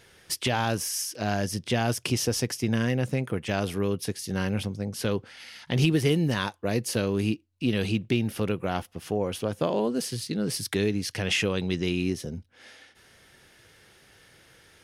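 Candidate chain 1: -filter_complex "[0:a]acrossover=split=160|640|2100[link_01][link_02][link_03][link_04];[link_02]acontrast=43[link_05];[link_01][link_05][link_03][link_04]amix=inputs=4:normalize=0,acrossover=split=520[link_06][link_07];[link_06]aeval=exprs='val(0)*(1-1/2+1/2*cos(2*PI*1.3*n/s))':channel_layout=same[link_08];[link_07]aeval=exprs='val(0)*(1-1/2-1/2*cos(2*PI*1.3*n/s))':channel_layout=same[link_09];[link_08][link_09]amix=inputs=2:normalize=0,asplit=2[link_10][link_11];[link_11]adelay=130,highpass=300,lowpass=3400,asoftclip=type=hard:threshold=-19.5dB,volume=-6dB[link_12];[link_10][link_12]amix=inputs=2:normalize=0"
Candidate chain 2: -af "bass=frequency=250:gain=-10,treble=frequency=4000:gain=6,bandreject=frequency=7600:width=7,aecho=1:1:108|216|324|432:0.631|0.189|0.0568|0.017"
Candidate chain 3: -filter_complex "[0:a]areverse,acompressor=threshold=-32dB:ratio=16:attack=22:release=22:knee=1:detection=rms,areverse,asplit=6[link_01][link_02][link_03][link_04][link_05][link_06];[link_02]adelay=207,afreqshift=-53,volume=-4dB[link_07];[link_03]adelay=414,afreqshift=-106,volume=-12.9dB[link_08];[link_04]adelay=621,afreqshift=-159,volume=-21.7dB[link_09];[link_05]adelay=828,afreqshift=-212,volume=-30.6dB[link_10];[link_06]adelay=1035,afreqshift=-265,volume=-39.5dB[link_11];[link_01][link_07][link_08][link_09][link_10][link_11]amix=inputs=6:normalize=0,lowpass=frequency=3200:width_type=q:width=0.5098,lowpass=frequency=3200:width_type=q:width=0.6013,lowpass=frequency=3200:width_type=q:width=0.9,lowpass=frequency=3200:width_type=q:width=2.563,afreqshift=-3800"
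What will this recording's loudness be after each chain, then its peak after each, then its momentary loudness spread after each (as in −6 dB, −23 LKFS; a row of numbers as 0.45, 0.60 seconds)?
−29.0, −27.0, −29.0 LKFS; −11.5, −10.5, −18.0 dBFS; 9, 9, 5 LU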